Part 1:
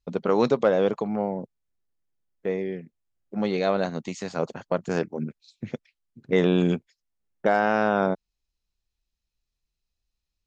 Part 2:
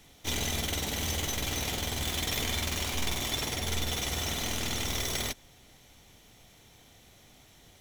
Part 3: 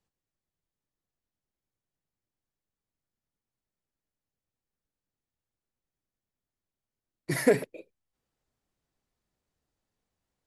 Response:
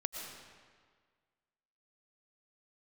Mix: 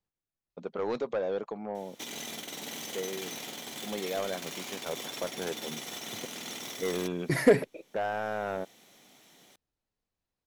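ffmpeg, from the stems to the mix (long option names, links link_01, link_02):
-filter_complex "[0:a]bass=frequency=250:gain=-9,treble=frequency=4000:gain=-4,asoftclip=type=tanh:threshold=-16.5dB,adelay=500,volume=-7dB[link_01];[1:a]highpass=frequency=180:width=0.5412,highpass=frequency=180:width=1.3066,alimiter=level_in=4.5dB:limit=-24dB:level=0:latency=1:release=264,volume=-4.5dB,adelay=1750,volume=-0.5dB[link_02];[2:a]agate=range=-7dB:threshold=-43dB:ratio=16:detection=peak,volume=12dB,asoftclip=hard,volume=-12dB,highshelf=frequency=6300:gain=-8,volume=2dB,asplit=2[link_03][link_04];[link_04]apad=whole_len=421480[link_05];[link_02][link_05]sidechaincompress=threshold=-31dB:ratio=12:attack=41:release=664[link_06];[link_01][link_06][link_03]amix=inputs=3:normalize=0"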